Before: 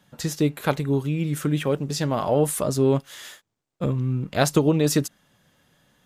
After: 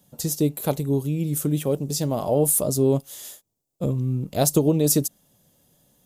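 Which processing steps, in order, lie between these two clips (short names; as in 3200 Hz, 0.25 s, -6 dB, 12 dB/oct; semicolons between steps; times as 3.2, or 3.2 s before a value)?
EQ curve 660 Hz 0 dB, 1600 Hz -14 dB, 13000 Hz +12 dB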